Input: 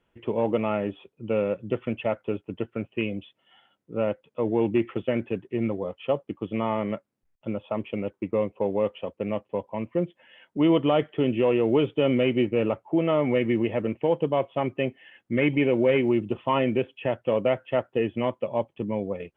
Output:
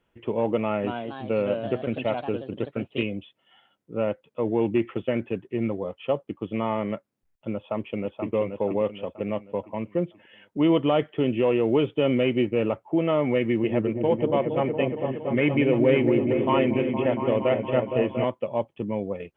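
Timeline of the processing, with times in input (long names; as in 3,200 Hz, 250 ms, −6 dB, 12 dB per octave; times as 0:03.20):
0:00.60–0:03.06: delay with pitch and tempo change per echo 238 ms, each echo +2 semitones, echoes 2, each echo −6 dB
0:07.56–0:08.33: delay throw 480 ms, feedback 45%, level −5.5 dB
0:13.40–0:18.24: echo whose low-pass opens from repeat to repeat 232 ms, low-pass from 400 Hz, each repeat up 1 octave, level −3 dB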